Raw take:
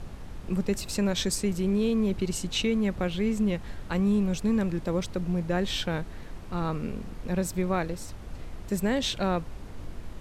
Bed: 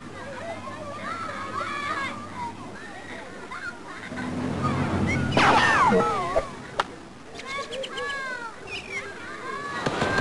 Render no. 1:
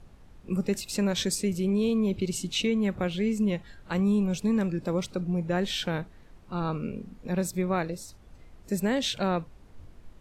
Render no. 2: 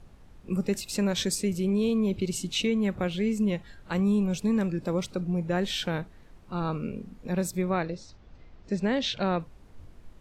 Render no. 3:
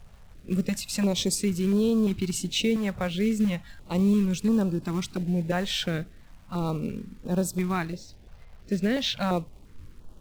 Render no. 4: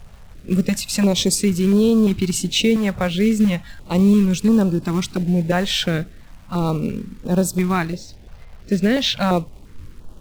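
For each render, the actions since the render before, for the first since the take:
noise print and reduce 12 dB
7.70–9.40 s: low-pass 5.5 kHz 24 dB/octave
in parallel at -10 dB: companded quantiser 4-bit; on the sum: step-sequenced notch 2.9 Hz 300–2100 Hz
trim +8 dB

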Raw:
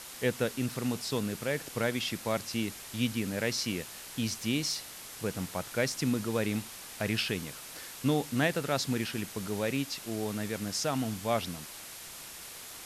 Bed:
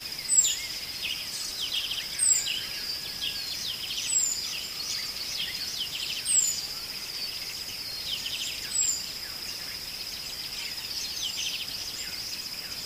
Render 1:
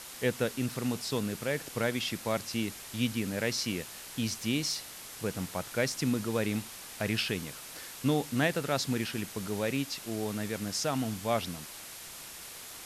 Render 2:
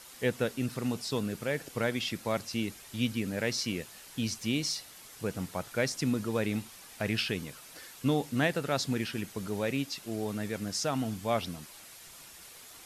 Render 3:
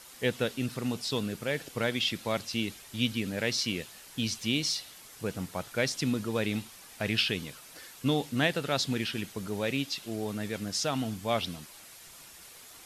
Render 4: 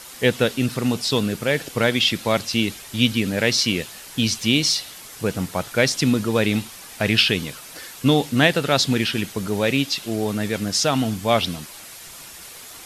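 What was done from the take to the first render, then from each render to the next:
no audible change
noise reduction 7 dB, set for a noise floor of -46 dBFS
dynamic bell 3.4 kHz, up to +7 dB, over -51 dBFS, Q 1.5
trim +10.5 dB

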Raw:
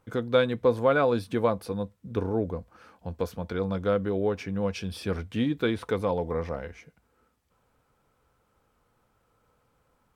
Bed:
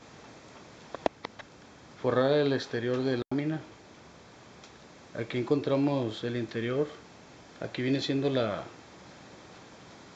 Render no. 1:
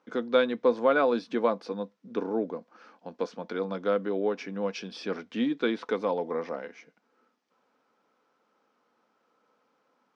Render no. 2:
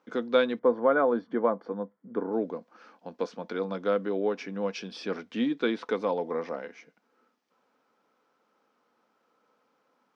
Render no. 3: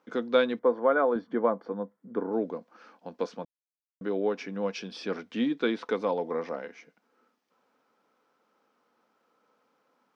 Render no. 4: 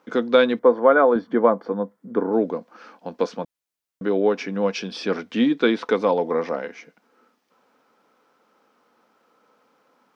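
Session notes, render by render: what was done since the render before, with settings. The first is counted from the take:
elliptic band-pass 230–5800 Hz, stop band 50 dB
0.59–2.33 s: Savitzky-Golay filter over 41 samples
0.61–1.16 s: peaking EQ 140 Hz -10.5 dB 1.1 oct; 3.45–4.01 s: mute
trim +8.5 dB; peak limiter -3 dBFS, peak gain reduction 2.5 dB

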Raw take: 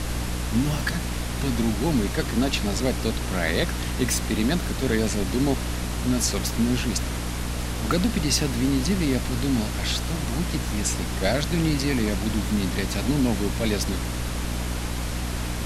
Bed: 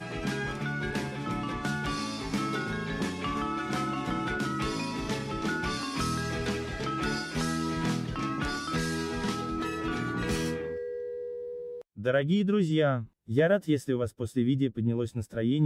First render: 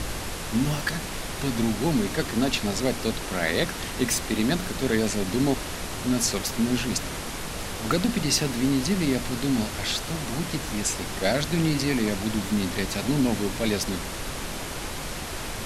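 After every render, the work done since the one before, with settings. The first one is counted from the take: de-hum 60 Hz, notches 5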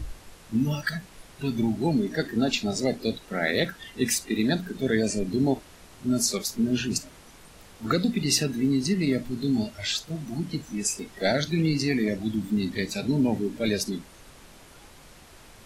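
noise print and reduce 17 dB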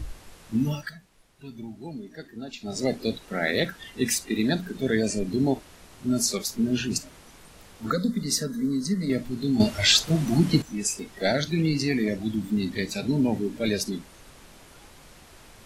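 0.68–2.85 s: dip -13.5 dB, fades 0.26 s; 7.90–9.10 s: static phaser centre 520 Hz, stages 8; 9.60–10.62 s: gain +10 dB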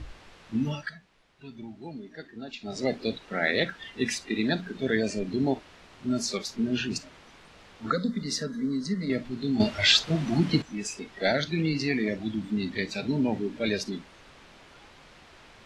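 low-pass 3.5 kHz 12 dB/octave; tilt EQ +1.5 dB/octave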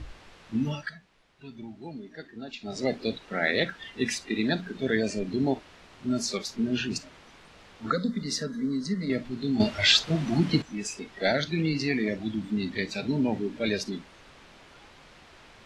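no audible change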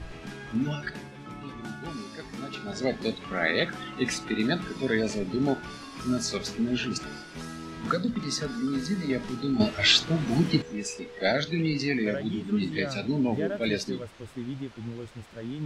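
add bed -9 dB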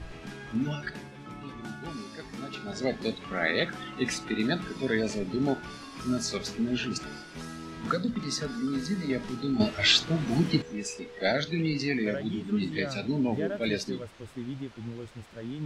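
trim -1.5 dB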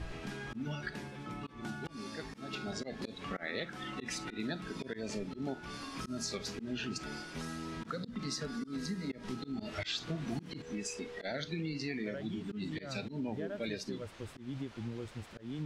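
slow attack 205 ms; compression 4:1, threshold -36 dBFS, peak gain reduction 12 dB

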